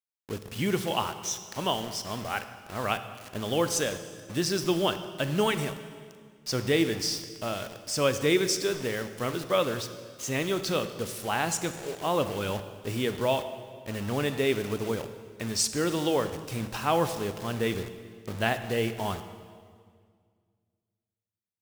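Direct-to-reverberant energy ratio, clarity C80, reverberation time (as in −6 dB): 10.0 dB, 12.0 dB, 2.0 s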